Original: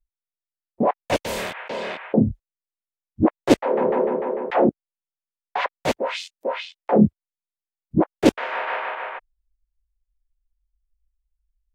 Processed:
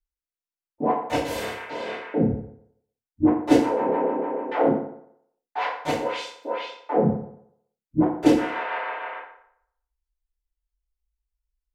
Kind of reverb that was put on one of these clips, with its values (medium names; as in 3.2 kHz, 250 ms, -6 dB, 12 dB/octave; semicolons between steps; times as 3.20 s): FDN reverb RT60 0.7 s, low-frequency decay 0.8×, high-frequency decay 0.7×, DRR -10 dB; trim -13 dB